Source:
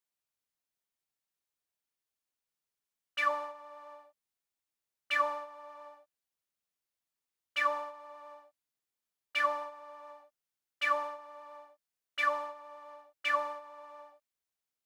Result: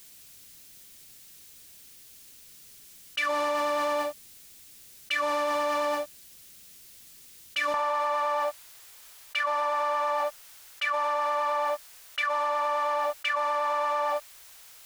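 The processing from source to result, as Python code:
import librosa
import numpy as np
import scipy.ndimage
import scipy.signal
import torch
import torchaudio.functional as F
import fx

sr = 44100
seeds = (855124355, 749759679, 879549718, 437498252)

y = fx.peak_eq(x, sr, hz=fx.steps((0.0, 910.0), (7.74, 220.0)), db=-13.5, octaves=2.2)
y = fx.env_flatten(y, sr, amount_pct=100)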